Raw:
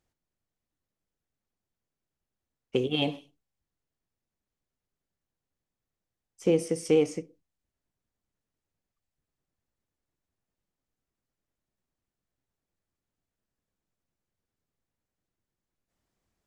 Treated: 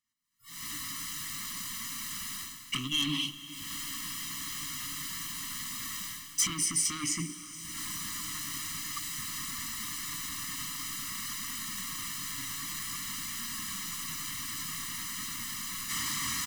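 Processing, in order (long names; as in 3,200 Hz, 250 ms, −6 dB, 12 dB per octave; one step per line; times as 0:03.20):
camcorder AGC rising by 45 dB per second
noise reduction from a noise print of the clip's start 28 dB
flanger 0.52 Hz, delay 4.1 ms, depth 3.3 ms, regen +67%
mid-hump overdrive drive 32 dB, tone 7,800 Hz, clips at −3.5 dBFS
reversed playback
downward compressor 5 to 1, threshold −32 dBFS, peak gain reduction 19 dB
reversed playback
elliptic band-stop filter 290–1,100 Hz, stop band 50 dB
high-shelf EQ 5,300 Hz +6.5 dB
comb filter 1 ms, depth 82%
feedback delay with all-pass diffusion 461 ms, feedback 79%, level −16 dB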